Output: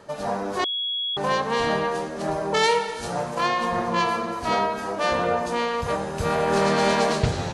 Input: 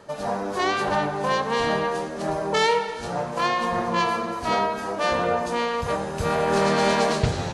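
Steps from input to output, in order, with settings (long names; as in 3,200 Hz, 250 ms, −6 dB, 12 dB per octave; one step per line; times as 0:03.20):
0:00.64–0:01.17: beep over 3,340 Hz −24 dBFS
0:02.63–0:03.35: high-shelf EQ 6,800 Hz +10.5 dB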